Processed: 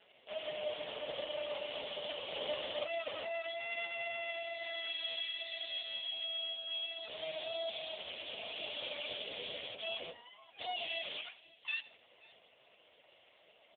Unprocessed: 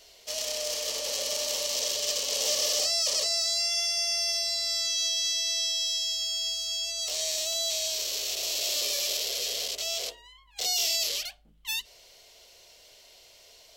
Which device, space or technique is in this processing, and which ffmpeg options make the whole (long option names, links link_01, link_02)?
satellite phone: -filter_complex "[0:a]asettb=1/sr,asplit=3[link_01][link_02][link_03];[link_01]atrim=end=2.214[link_04];[link_02]atrim=start=2.21:end=2.66,asetpts=PTS-STARTPTS,afade=type=in:duration=0.004:curve=qsin,afade=type=out:start_time=0.446:duration=0.004:curve=qsin,highpass=100[link_05];[link_03]atrim=start=2.656[link_06];[link_04][link_05]acrossfade=duration=0.004:curve1=hsin:curve2=qsin[link_07];[link_07][link_06]acrossfade=duration=0.004:curve1=qsin:curve2=hsin,highpass=350,lowpass=3100,aecho=1:1:76|152|228|304:0.119|0.0547|0.0251|0.0116,aecho=1:1:525:0.0794,volume=1.5dB" -ar 8000 -c:a libopencore_amrnb -b:a 4750